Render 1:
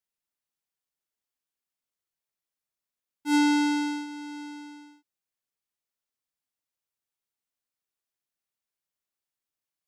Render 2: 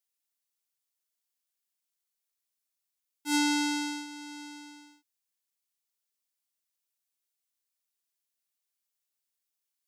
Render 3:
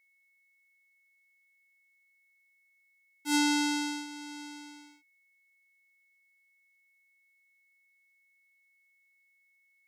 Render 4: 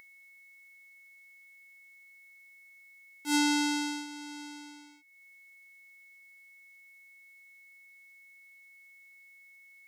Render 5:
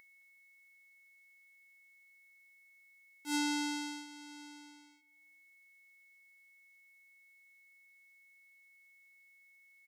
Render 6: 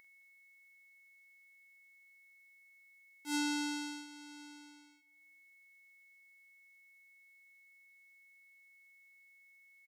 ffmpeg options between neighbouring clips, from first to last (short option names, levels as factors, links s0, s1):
-af "highpass=210,highshelf=f=2700:g=11.5,volume=0.531"
-af "aeval=exprs='val(0)+0.000447*sin(2*PI*2200*n/s)':c=same"
-af "acompressor=mode=upward:threshold=0.00501:ratio=2.5"
-filter_complex "[0:a]asplit=2[s0][s1];[s1]adelay=217,lowpass=f=2000:p=1,volume=0.112,asplit=2[s2][s3];[s3]adelay=217,lowpass=f=2000:p=1,volume=0.36,asplit=2[s4][s5];[s5]adelay=217,lowpass=f=2000:p=1,volume=0.36[s6];[s0][s2][s4][s6]amix=inputs=4:normalize=0,volume=0.447"
-filter_complex "[0:a]asplit=2[s0][s1];[s1]adelay=45,volume=0.251[s2];[s0][s2]amix=inputs=2:normalize=0,volume=0.841"